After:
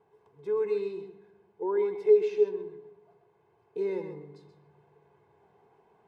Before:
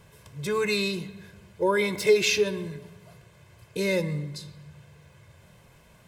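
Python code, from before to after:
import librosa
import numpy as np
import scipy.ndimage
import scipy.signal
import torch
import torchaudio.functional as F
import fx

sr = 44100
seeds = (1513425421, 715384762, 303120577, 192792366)

y = fx.rider(x, sr, range_db=4, speed_s=2.0)
y = fx.double_bandpass(y, sr, hz=570.0, octaves=0.89)
y = y + 10.0 ** (-9.5 / 20.0) * np.pad(y, (int(130 * sr / 1000.0), 0))[:len(y)]
y = y * 10.0 ** (1.5 / 20.0)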